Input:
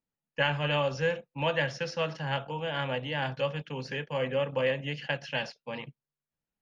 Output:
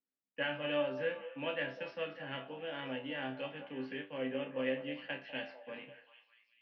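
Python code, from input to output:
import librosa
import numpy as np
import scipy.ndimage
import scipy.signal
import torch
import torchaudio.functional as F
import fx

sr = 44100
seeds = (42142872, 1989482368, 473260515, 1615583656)

y = fx.cabinet(x, sr, low_hz=170.0, low_slope=24, high_hz=3400.0, hz=(190.0, 270.0, 930.0), db=(-5, 9, -8))
y = fx.resonator_bank(y, sr, root=36, chord='fifth', decay_s=0.25)
y = fx.echo_stepped(y, sr, ms=197, hz=660.0, octaves=0.7, feedback_pct=70, wet_db=-9.0)
y = F.gain(torch.from_numpy(y), 1.0).numpy()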